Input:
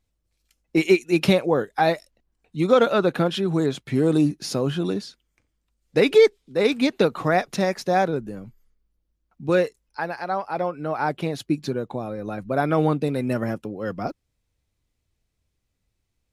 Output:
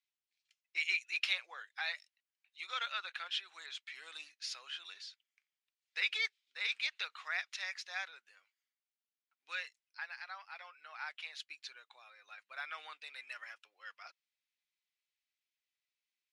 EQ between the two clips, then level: ladder high-pass 1600 Hz, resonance 20%; air absorption 80 m; high shelf 9900 Hz -7.5 dB; 0.0 dB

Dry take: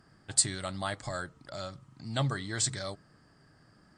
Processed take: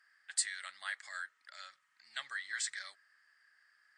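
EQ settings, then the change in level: resonant high-pass 1800 Hz, resonance Q 4.3; -8.5 dB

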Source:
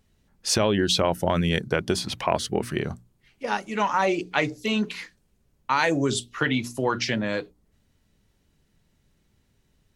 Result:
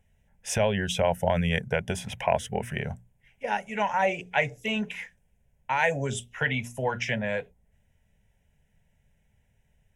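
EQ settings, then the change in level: high shelf 11000 Hz -8.5 dB; fixed phaser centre 1200 Hz, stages 6; +1.0 dB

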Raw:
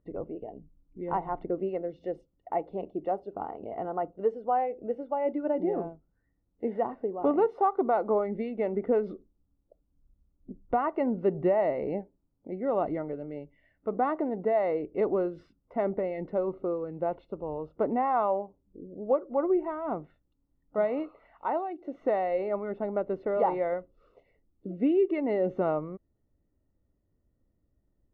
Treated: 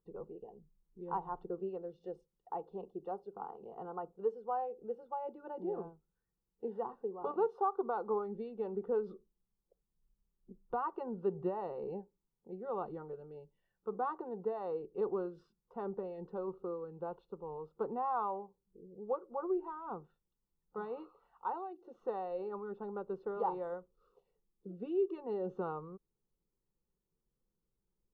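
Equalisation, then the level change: low shelf 410 Hz -6 dB; fixed phaser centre 420 Hz, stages 8; -4.0 dB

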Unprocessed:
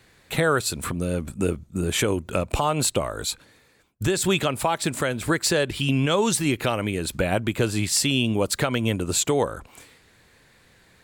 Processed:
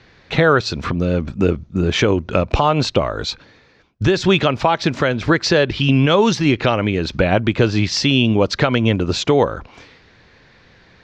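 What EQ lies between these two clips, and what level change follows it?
air absorption 170 m; resonant high shelf 7100 Hz -7.5 dB, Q 3; +8.0 dB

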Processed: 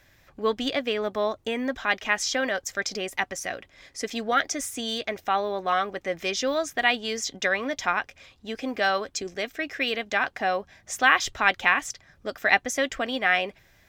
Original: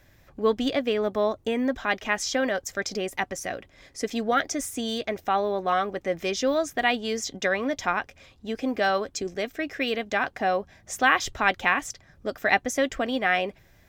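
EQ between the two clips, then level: tilt shelf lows -4.5 dB, about 920 Hz; high shelf 6500 Hz -5.5 dB; 0.0 dB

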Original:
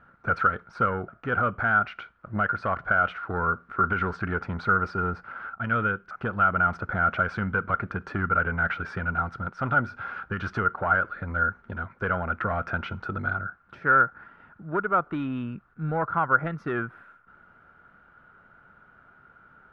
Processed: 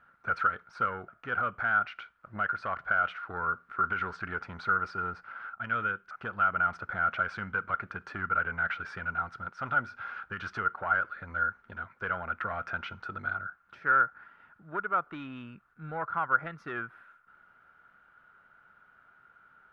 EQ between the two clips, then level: tilt shelf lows -6 dB, about 760 Hz; -7.5 dB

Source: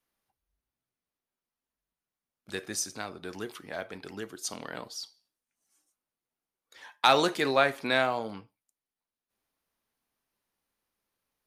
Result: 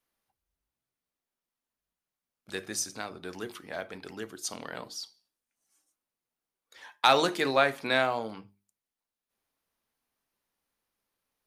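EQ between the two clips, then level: notches 50/100/150/200/250/300/350/400 Hz; 0.0 dB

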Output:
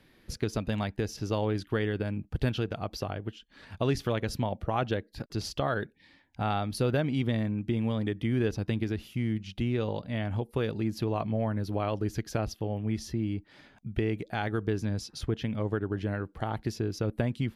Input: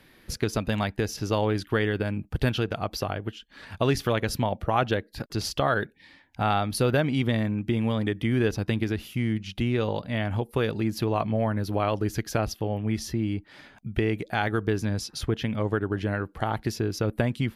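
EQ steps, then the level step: bell 1500 Hz -4 dB 2.6 oct; high shelf 10000 Hz -11 dB; -3.0 dB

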